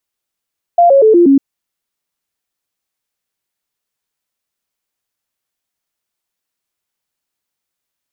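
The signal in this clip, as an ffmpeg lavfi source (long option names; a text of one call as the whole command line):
ffmpeg -f lavfi -i "aevalsrc='0.631*clip(min(mod(t,0.12),0.12-mod(t,0.12))/0.005,0,1)*sin(2*PI*693*pow(2,-floor(t/0.12)/3)*mod(t,0.12))':duration=0.6:sample_rate=44100" out.wav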